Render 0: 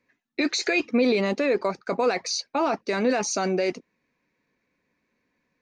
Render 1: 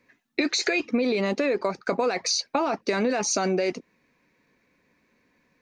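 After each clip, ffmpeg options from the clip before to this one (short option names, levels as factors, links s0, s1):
-af "acompressor=threshold=0.0355:ratio=6,volume=2.37"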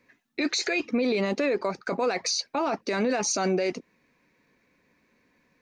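-af "alimiter=limit=0.133:level=0:latency=1:release=35"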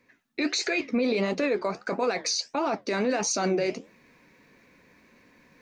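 -af "flanger=delay=7.2:depth=9.9:regen=-69:speed=1.5:shape=triangular,areverse,acompressor=mode=upward:threshold=0.00251:ratio=2.5,areverse,volume=1.58"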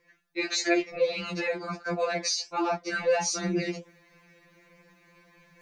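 -af "afftfilt=real='re*2.83*eq(mod(b,8),0)':imag='im*2.83*eq(mod(b,8),0)':win_size=2048:overlap=0.75,volume=1.26"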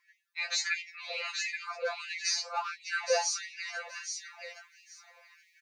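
-filter_complex "[0:a]asplit=2[s0][s1];[s1]aecho=0:1:823|1646|2469:0.501|0.0902|0.0162[s2];[s0][s2]amix=inputs=2:normalize=0,afftfilt=real='re*gte(b*sr/1024,470*pow(1800/470,0.5+0.5*sin(2*PI*1.5*pts/sr)))':imag='im*gte(b*sr/1024,470*pow(1800/470,0.5+0.5*sin(2*PI*1.5*pts/sr)))':win_size=1024:overlap=0.75,volume=0.794"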